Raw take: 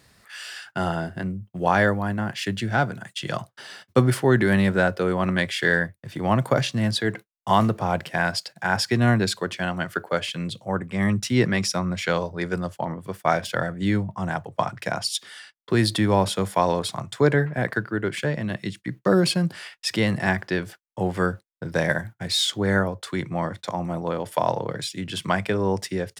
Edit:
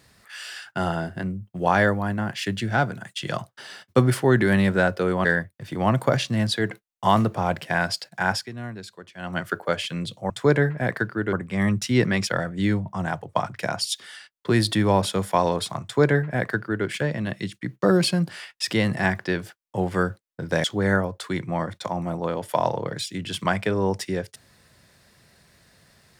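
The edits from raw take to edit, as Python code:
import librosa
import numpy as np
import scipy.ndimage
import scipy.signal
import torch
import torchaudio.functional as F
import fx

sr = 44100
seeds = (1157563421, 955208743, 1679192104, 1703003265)

y = fx.edit(x, sr, fx.cut(start_s=5.25, length_s=0.44),
    fx.fade_down_up(start_s=8.73, length_s=1.08, db=-15.5, fade_s=0.2),
    fx.cut(start_s=11.68, length_s=1.82),
    fx.duplicate(start_s=17.06, length_s=1.03, to_s=10.74),
    fx.cut(start_s=21.87, length_s=0.6), tone=tone)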